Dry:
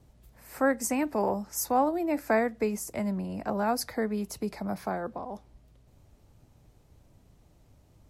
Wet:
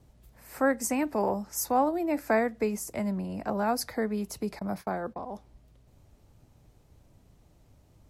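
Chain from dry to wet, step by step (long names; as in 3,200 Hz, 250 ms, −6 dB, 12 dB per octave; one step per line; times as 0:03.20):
0:04.59–0:05.27: noise gate −38 dBFS, range −22 dB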